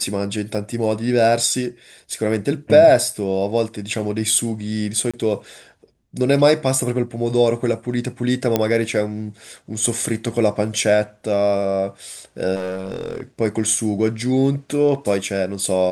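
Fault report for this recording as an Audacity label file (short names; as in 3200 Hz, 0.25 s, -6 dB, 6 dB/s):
0.550000	0.550000	gap 2.6 ms
5.110000	5.140000	gap 26 ms
8.560000	8.560000	pop -3 dBFS
12.550000	13.230000	clipped -21.5 dBFS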